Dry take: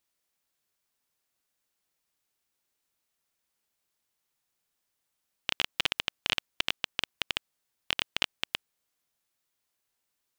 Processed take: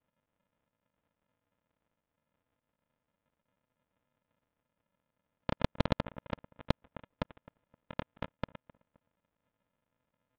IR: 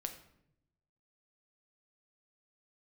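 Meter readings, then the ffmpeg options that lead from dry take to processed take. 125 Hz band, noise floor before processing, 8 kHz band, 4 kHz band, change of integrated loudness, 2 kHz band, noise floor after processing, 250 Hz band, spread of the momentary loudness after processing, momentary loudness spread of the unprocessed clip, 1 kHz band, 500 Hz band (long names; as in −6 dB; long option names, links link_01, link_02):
+14.0 dB, −82 dBFS, below −20 dB, −18.5 dB, −7.0 dB, −13.0 dB, below −85 dBFS, +11.0 dB, 11 LU, 6 LU, 0.0 dB, +7.0 dB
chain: -filter_complex "[0:a]highpass=160,aemphasis=mode=reproduction:type=50fm,aresample=11025,acrusher=samples=29:mix=1:aa=0.000001,aresample=44100,aresample=8000,aresample=44100,asplit=2[link_01][link_02];[link_02]adelay=261,lowpass=frequency=1400:poles=1,volume=-23dB,asplit=2[link_03][link_04];[link_04]adelay=261,lowpass=frequency=1400:poles=1,volume=0.35[link_05];[link_01][link_03][link_05]amix=inputs=3:normalize=0,asplit=2[link_06][link_07];[link_07]highpass=frequency=720:poles=1,volume=23dB,asoftclip=type=tanh:threshold=-11dB[link_08];[link_06][link_08]amix=inputs=2:normalize=0,lowpass=frequency=2100:poles=1,volume=-6dB"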